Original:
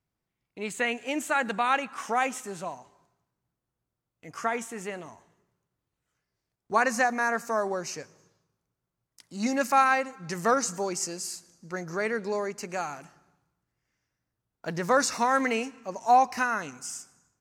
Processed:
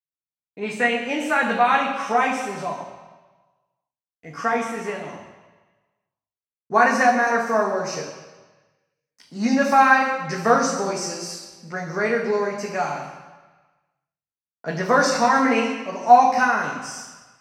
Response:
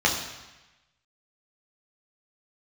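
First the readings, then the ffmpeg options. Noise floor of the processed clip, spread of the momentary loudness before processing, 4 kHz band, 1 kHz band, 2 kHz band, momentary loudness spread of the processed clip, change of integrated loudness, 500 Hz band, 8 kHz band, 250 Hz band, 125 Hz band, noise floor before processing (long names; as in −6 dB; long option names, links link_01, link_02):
below −85 dBFS, 15 LU, +6.0 dB, +7.5 dB, +7.5 dB, 17 LU, +7.5 dB, +7.0 dB, +1.5 dB, +8.0 dB, +7.0 dB, −85 dBFS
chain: -filter_complex "[0:a]agate=range=-33dB:threshold=-58dB:ratio=3:detection=peak[link_01];[1:a]atrim=start_sample=2205,asetrate=37044,aresample=44100[link_02];[link_01][link_02]afir=irnorm=-1:irlink=0,volume=-10.5dB"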